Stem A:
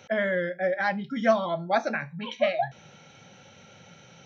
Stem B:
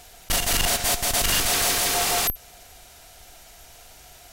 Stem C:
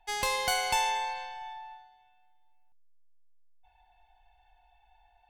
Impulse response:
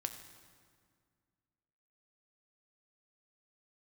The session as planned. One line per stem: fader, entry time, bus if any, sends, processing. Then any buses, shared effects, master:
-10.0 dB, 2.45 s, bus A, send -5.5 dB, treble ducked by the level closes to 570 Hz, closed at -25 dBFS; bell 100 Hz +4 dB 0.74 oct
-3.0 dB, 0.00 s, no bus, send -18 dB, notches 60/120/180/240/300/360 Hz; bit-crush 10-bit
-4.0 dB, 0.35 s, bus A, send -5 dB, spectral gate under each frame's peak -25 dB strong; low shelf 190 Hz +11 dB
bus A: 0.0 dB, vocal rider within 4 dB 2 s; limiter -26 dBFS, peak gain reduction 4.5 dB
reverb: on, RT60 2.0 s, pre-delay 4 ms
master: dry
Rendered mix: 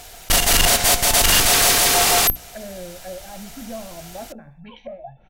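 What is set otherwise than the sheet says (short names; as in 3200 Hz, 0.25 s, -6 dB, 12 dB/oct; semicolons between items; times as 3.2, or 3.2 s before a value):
stem B -3.0 dB -> +6.5 dB; reverb return -9.5 dB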